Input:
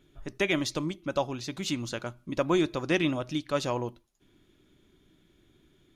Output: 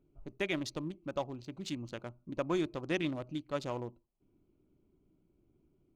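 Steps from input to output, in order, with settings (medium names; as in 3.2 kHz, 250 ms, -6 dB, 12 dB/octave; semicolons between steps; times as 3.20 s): local Wiener filter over 25 samples; trim -7 dB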